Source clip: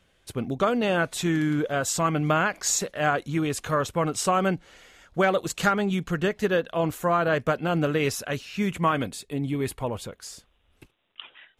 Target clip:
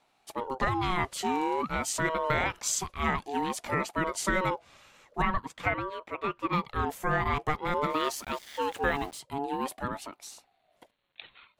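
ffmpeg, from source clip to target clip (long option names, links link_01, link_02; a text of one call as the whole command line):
ffmpeg -i in.wav -filter_complex "[0:a]asettb=1/sr,asplit=3[link_01][link_02][link_03];[link_01]atrim=end=5.224[link_04];[link_02]atrim=start=5.22:end=6.53,asetpts=PTS-STARTPTS,afade=type=in:duration=0.004:curve=qsin,afade=type=out:start_time=1.306:duration=0.004:curve=qsin,acrossover=split=250 2300:gain=0.0891 1 0.158[link_05][link_06][link_07];[link_05][link_06][link_07]amix=inputs=3:normalize=0[link_08];[link_03]atrim=start=6.526[link_09];[link_04][link_08]acrossfade=duration=0.004:curve1=hsin:curve2=qsin[link_10];[link_10][link_09]acrossfade=duration=0.004:curve1=qsin:curve2=hsin,asettb=1/sr,asplit=3[link_11][link_12][link_13];[link_11]atrim=end=7.904[link_14];[link_12]atrim=start=7.9:end=9.19,asetpts=PTS-STARTPTS,afade=type=in:duration=0.004:curve=qsin,afade=type=out:start_time=1.286:duration=0.004:curve=qsin,aeval=exprs='val(0)*gte(abs(val(0)),0.00891)':channel_layout=same[link_15];[link_13]atrim=start=9.186[link_16];[link_14][link_15]acrossfade=duration=0.004:curve1=hsin:curve2=qsin[link_17];[link_17][link_16]acrossfade=duration=0.004:curve1=qsin:curve2=hsin,aeval=exprs='val(0)*sin(2*PI*670*n/s+670*0.2/0.49*sin(2*PI*0.49*n/s))':channel_layout=same,volume=-2dB" out.wav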